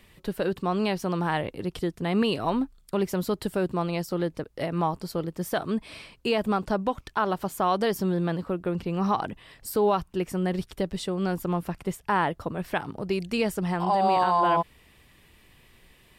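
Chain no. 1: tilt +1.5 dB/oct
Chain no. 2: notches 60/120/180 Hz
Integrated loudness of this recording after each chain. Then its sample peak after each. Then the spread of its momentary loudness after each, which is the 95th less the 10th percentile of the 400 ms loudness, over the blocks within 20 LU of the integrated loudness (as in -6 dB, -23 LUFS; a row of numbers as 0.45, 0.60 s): -29.0, -28.0 LUFS; -12.0, -13.5 dBFS; 9, 8 LU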